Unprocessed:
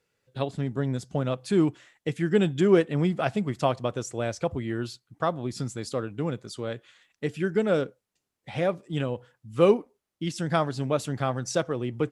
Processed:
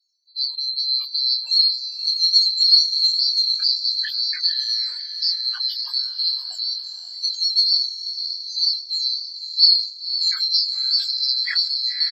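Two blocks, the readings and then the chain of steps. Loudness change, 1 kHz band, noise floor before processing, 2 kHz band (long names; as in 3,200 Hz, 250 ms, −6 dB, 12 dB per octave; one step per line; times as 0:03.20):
+9.5 dB, below −20 dB, −84 dBFS, 0.0 dB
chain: neighbouring bands swapped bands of 4,000 Hz
high-pass filter 350 Hz 24 dB per octave
in parallel at −2 dB: downward compressor 5 to 1, threshold −34 dBFS, peak gain reduction 18 dB
on the sum: spectral peaks only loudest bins 16
floating-point word with a short mantissa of 8 bits
high-pass filter sweep 670 Hz → 1,900 Hz, 0:00.01–0:01.12
double-tracking delay 23 ms −3 dB
on a send: feedback delay with all-pass diffusion 536 ms, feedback 44%, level −9 dB
on the sum: level that may fall only so fast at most 120 dB per second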